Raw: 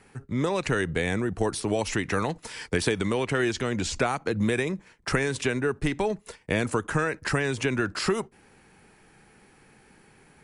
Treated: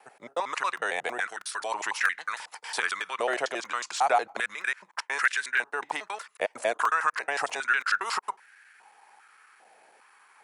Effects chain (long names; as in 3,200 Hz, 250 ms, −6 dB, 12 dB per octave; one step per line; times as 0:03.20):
slices reordered back to front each 91 ms, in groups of 2
regular buffer underruns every 0.32 s, samples 128, repeat, from 0:00.77
high-pass on a step sequencer 2.5 Hz 660–1,600 Hz
level −2.5 dB